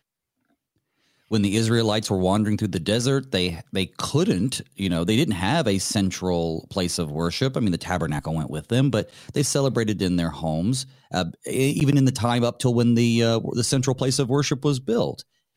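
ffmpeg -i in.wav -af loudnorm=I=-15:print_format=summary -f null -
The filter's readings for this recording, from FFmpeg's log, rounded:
Input Integrated:    -22.8 LUFS
Input True Peak:      -7.4 dBTP
Input LRA:             2.7 LU
Input Threshold:     -33.0 LUFS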